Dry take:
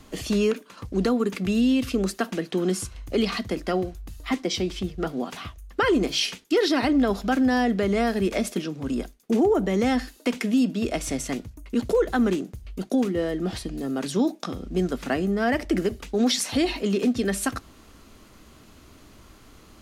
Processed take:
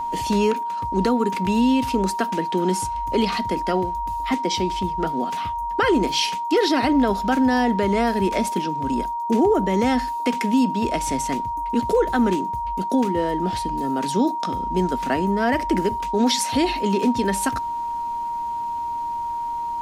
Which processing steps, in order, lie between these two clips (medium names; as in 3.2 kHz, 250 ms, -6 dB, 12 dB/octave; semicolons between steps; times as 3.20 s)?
whistle 940 Hz -26 dBFS; trim +2 dB